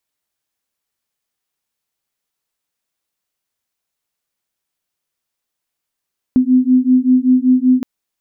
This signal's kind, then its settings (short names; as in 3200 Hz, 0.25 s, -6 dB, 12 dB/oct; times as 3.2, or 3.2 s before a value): beating tones 252 Hz, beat 5.2 Hz, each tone -12 dBFS 1.47 s